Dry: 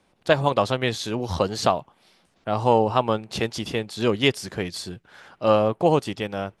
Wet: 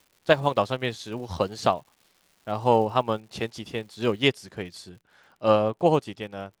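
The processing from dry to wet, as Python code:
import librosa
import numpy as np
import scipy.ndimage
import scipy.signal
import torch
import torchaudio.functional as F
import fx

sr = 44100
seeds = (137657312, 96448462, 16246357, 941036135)

y = fx.dmg_crackle(x, sr, seeds[0], per_s=fx.steps((0.0, 340.0), (4.2, 46.0)), level_db=-37.0)
y = fx.upward_expand(y, sr, threshold_db=-34.0, expansion=1.5)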